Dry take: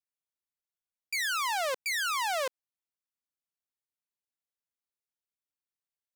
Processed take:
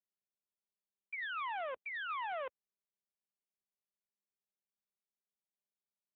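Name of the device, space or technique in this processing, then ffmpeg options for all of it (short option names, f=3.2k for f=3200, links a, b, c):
telephone: -filter_complex "[0:a]asplit=3[a][b][c];[a]afade=t=out:st=1.44:d=0.02[d];[b]highshelf=f=5.2k:g=-4.5,afade=t=in:st=1.44:d=0.02,afade=t=out:st=2.39:d=0.02[e];[c]afade=t=in:st=2.39:d=0.02[f];[d][e][f]amix=inputs=3:normalize=0,highpass=350,lowpass=3.1k,asoftclip=type=tanh:threshold=-26dB,volume=-5dB" -ar 8000 -c:a libopencore_amrnb -b:a 12200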